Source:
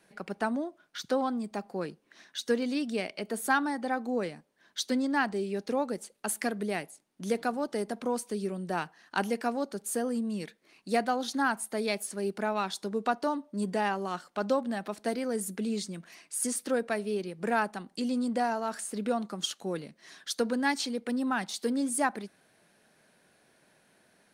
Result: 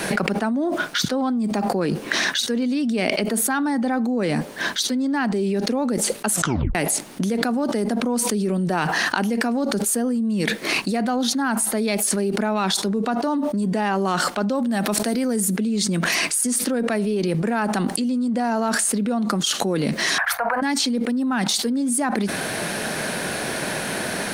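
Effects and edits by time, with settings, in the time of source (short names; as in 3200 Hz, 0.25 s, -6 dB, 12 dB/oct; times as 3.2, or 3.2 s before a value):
6.31 tape stop 0.44 s
14.55–15.41 high shelf 6300 Hz +10 dB
20.18–20.62 EQ curve 100 Hz 0 dB, 190 Hz -27 dB, 390 Hz -23 dB, 720 Hz +13 dB, 2300 Hz +4 dB, 3400 Hz -21 dB, 7400 Hz -24 dB, 13000 Hz -5 dB
whole clip: dynamic EQ 240 Hz, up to +7 dB, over -45 dBFS, Q 2.2; fast leveller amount 100%; gain -1.5 dB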